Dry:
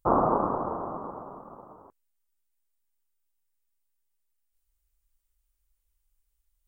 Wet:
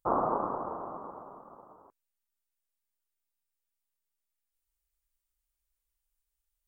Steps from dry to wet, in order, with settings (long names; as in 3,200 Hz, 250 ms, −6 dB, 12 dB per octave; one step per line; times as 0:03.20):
low-shelf EQ 280 Hz −7.5 dB
level −4 dB